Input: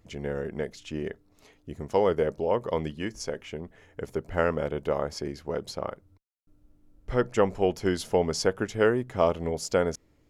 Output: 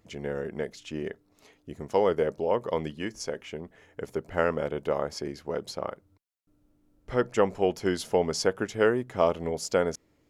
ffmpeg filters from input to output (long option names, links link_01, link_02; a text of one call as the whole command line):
ffmpeg -i in.wav -af "lowshelf=frequency=79:gain=-12" out.wav